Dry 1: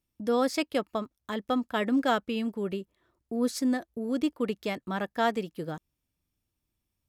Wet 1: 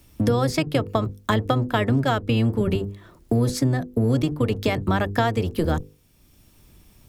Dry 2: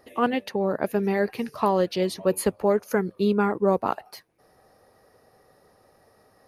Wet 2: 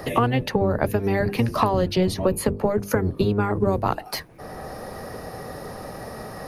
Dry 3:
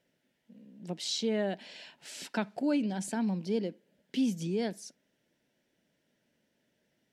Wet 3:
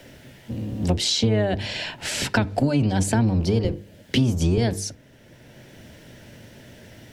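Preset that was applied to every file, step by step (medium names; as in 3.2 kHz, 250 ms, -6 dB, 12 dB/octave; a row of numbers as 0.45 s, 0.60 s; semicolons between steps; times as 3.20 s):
octave divider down 1 oct, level +3 dB; compression 12:1, threshold -32 dBFS; hum notches 50/100/150/200/250/300/350/400/450/500 Hz; three bands compressed up and down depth 40%; normalise loudness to -23 LUFS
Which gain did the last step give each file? +15.5 dB, +15.5 dB, +17.0 dB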